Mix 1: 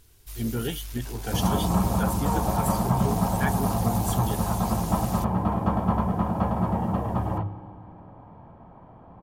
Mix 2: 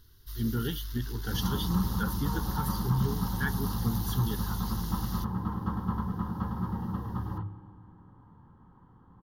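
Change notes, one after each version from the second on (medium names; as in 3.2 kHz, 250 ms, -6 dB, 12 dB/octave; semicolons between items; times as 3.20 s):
background -6.0 dB; master: add static phaser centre 2.4 kHz, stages 6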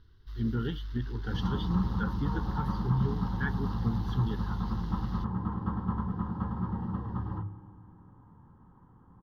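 master: add distance through air 280 m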